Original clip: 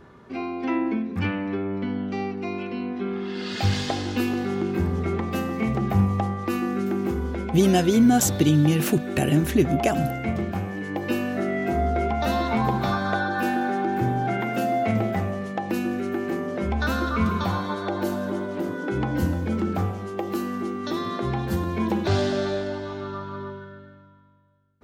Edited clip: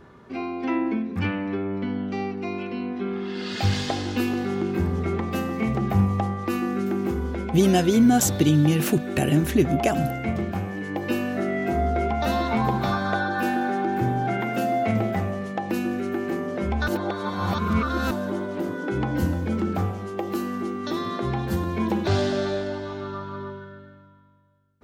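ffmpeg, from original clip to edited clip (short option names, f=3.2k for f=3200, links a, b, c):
-filter_complex "[0:a]asplit=3[a][b][c];[a]atrim=end=16.882[d];[b]atrim=start=16.878:end=18.112,asetpts=PTS-STARTPTS,areverse[e];[c]atrim=start=18.108[f];[d][e]acrossfade=d=0.004:c1=hsin:c2=hsin[g];[g][f]acrossfade=d=0.004:c1=hsin:c2=hsin"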